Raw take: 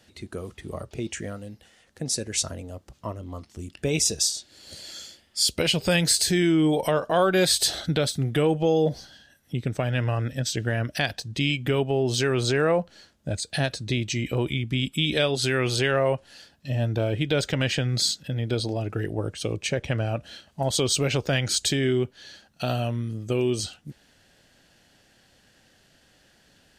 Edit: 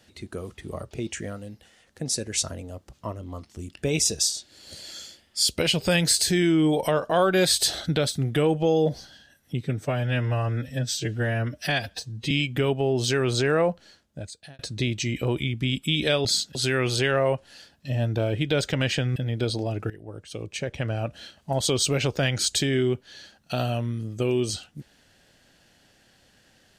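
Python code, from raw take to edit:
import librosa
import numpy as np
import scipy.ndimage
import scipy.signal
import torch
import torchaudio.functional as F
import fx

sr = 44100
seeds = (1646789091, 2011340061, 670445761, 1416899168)

y = fx.edit(x, sr, fx.stretch_span(start_s=9.61, length_s=1.8, factor=1.5),
    fx.fade_out_span(start_s=12.79, length_s=0.9),
    fx.move(start_s=17.96, length_s=0.3, to_s=15.35),
    fx.fade_in_from(start_s=19.0, length_s=1.29, floor_db=-17.0), tone=tone)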